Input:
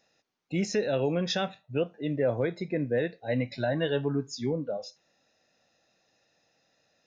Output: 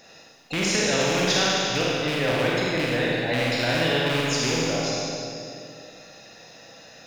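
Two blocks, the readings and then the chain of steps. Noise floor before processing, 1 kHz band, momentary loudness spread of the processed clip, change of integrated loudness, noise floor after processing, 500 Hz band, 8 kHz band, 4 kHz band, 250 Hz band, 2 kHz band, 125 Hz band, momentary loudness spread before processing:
-72 dBFS, +11.0 dB, 12 LU, +7.0 dB, -50 dBFS, +4.0 dB, no reading, +14.5 dB, +4.0 dB, +13.5 dB, +4.5 dB, 5 LU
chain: rattle on loud lows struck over -30 dBFS, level -30 dBFS; Schroeder reverb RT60 1.7 s, combs from 33 ms, DRR -4.5 dB; spectrum-flattening compressor 2:1

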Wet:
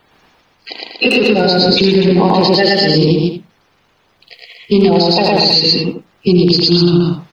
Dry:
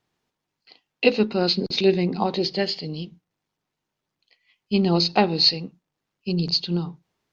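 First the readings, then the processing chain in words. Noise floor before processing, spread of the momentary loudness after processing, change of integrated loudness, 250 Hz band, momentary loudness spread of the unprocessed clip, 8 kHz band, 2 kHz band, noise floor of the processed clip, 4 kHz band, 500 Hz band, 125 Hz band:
-83 dBFS, 10 LU, +11.0 dB, +12.5 dB, 15 LU, no reading, +13.0 dB, -56 dBFS, +11.0 dB, +12.0 dB, +13.0 dB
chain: coarse spectral quantiser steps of 30 dB; on a send: loudspeakers at several distances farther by 38 m 0 dB, 82 m -6 dB; on the sum: compression 8:1, threshold -27 dBFS, peak gain reduction 16 dB; speakerphone echo 80 ms, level -6 dB; loudness maximiser +24 dB; trim -1 dB

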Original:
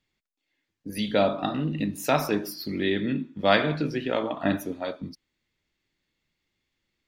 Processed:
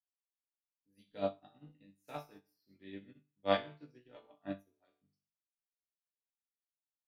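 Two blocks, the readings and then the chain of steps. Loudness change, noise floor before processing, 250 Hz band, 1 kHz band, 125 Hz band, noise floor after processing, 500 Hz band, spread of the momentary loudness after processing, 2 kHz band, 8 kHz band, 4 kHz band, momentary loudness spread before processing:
-13.5 dB, -82 dBFS, -20.0 dB, -14.5 dB, -21.5 dB, under -85 dBFS, -14.0 dB, 25 LU, -18.5 dB, under -30 dB, -16.0 dB, 12 LU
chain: chord resonator G2 major, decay 0.46 s; upward expansion 2.5:1, over -49 dBFS; trim +3.5 dB

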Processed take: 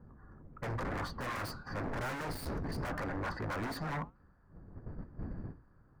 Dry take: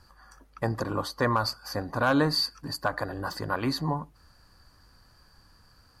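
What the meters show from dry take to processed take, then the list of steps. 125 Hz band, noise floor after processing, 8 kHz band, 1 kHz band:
-7.0 dB, -65 dBFS, -9.5 dB, -9.5 dB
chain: wind noise 160 Hz -36 dBFS; hum notches 60/120/180/240 Hz; gate -41 dBFS, range -9 dB; level-controlled noise filter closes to 1.4 kHz, open at -21 dBFS; hard clipper -26.5 dBFS, distortion -7 dB; flange 0.93 Hz, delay 3.2 ms, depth 4.8 ms, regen -89%; wavefolder -36 dBFS; resonant high shelf 2.4 kHz -7.5 dB, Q 1.5; trim +4.5 dB

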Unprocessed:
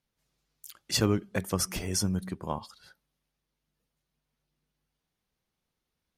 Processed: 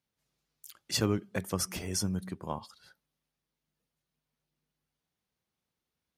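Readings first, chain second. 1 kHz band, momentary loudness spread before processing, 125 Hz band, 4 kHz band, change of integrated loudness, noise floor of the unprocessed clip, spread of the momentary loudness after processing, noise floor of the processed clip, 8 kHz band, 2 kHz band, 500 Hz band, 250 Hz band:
-3.0 dB, 12 LU, -3.5 dB, -3.0 dB, -3.0 dB, -85 dBFS, 12 LU, under -85 dBFS, -3.0 dB, -3.0 dB, -3.0 dB, -3.0 dB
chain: high-pass 63 Hz; trim -3 dB

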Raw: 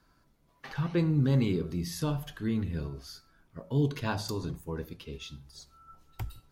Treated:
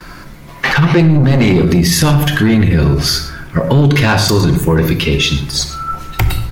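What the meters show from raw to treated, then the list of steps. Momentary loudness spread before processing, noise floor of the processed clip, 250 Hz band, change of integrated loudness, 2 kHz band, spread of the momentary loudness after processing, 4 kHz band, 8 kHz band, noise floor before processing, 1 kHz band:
23 LU, -33 dBFS, +19.0 dB, +19.5 dB, +26.5 dB, 8 LU, +26.5 dB, +26.0 dB, -67 dBFS, +22.5 dB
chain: peaking EQ 2.1 kHz +7 dB 0.89 oct; in parallel at +2 dB: compression, threshold -41 dBFS, peak gain reduction 18.5 dB; on the sum: delay 110 ms -15.5 dB; saturation -24 dBFS, distortion -12 dB; gate with hold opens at -52 dBFS; simulated room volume 1900 m³, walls furnished, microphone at 0.92 m; loudness maximiser +28 dB; trim -3 dB

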